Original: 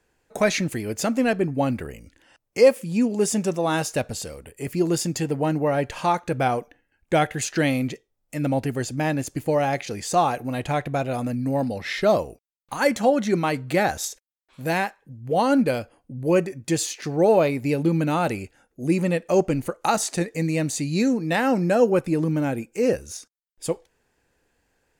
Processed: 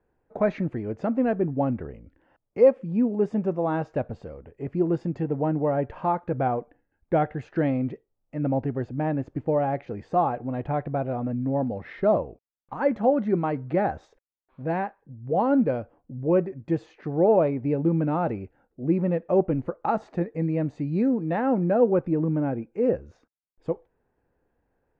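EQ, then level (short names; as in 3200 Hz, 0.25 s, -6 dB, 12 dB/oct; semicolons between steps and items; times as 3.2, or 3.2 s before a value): LPF 1100 Hz 12 dB/oct; air absorption 63 m; -1.5 dB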